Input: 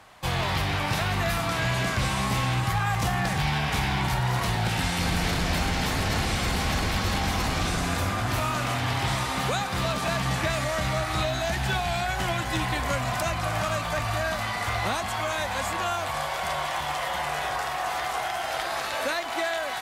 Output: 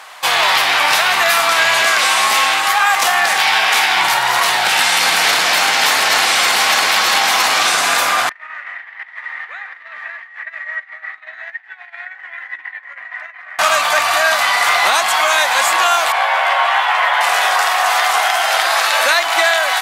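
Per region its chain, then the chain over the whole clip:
1.82–3.97 s: high-pass 210 Hz + band-stop 1 kHz, Q 19
8.29–13.59 s: tilt EQ -4.5 dB/octave + compressor with a negative ratio -18 dBFS, ratio -0.5 + band-pass filter 1.9 kHz, Q 13
16.12–17.21 s: three-band isolator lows -23 dB, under 390 Hz, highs -19 dB, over 3.1 kHz + doubling 14 ms -3 dB
whole clip: high-pass 860 Hz 12 dB/octave; loudness maximiser +18 dB; trim -1 dB

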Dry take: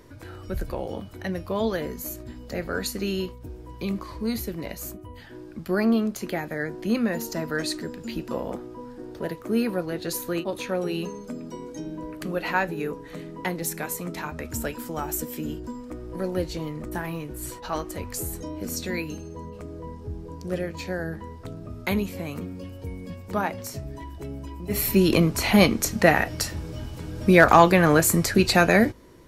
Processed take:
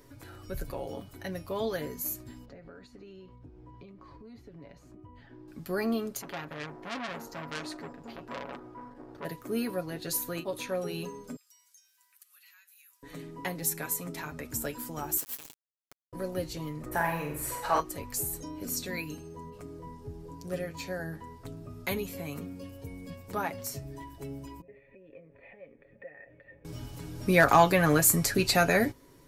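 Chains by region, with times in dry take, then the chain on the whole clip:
2.45–5.48 s: compression 8:1, threshold -37 dBFS + tape spacing loss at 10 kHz 29 dB
6.21–9.25 s: low-pass 2.1 kHz 6 dB/octave + peaking EQ 1.2 kHz +6.5 dB 1.2 oct + transformer saturation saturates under 2.8 kHz
11.36–13.03 s: high-pass 1.3 kHz 24 dB/octave + differentiator + compression 3:1, threshold -56 dBFS
15.17–16.13 s: high-pass 1.3 kHz 6 dB/octave + word length cut 6-bit, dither none
16.86–17.80 s: high-order bell 1 kHz +9 dB 2.8 oct + flutter echo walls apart 8.1 m, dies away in 0.56 s
24.61–26.65 s: compression 16:1, threshold -28 dBFS + cascade formant filter e
whole clip: treble shelf 6.8 kHz +9 dB; comb 7.2 ms, depth 52%; trim -7 dB

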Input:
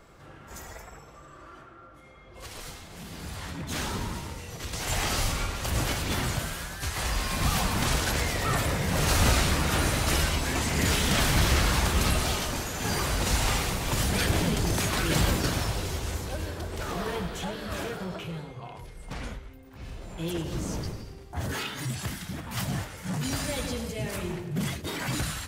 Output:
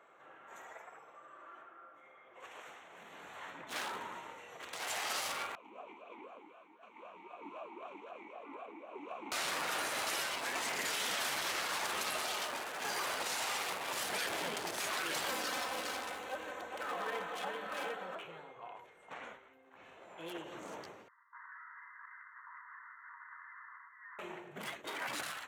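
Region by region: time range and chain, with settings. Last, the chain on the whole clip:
1.70–3.10 s: band-stop 4.1 kHz, Q 7 + loudspeaker Doppler distortion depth 0.36 ms
5.55–9.32 s: bass shelf 500 Hz +6 dB + ring modulator 140 Hz + talking filter a-u 3.9 Hz
15.30–18.15 s: comb 3.9 ms, depth 60% + delay 409 ms -6.5 dB
21.08–24.19 s: brick-wall FIR band-pass 920–2100 Hz + compression 12:1, threshold -43 dBFS
whole clip: local Wiener filter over 9 samples; high-pass 600 Hz 12 dB/octave; peak limiter -23.5 dBFS; trim -3 dB

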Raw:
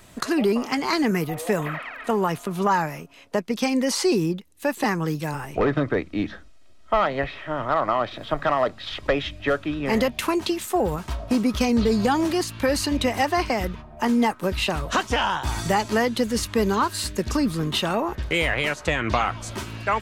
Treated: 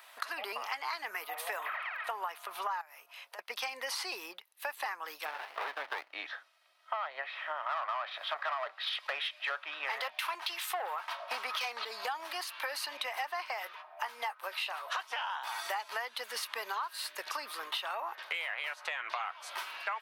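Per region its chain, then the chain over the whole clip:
2.81–3.39 s: treble shelf 4.8 kHz +8 dB + compression 4:1, threshold -41 dBFS
5.25–6.13 s: low-pass 6.1 kHz + peaking EQ 2.1 kHz +8 dB 1.5 oct + sliding maximum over 33 samples
7.66–11.85 s: overdrive pedal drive 19 dB, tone 4.5 kHz, clips at -8.5 dBFS + three bands expanded up and down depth 70%
13.54–15.00 s: tone controls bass -13 dB, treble 0 dB + doubling 16 ms -13.5 dB
whole clip: high-pass 780 Hz 24 dB/octave; peaking EQ 7.2 kHz -13 dB 0.75 oct; compression 6:1, threshold -34 dBFS

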